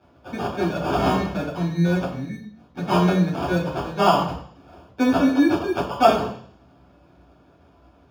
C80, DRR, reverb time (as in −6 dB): 10.0 dB, −6.0 dB, 0.55 s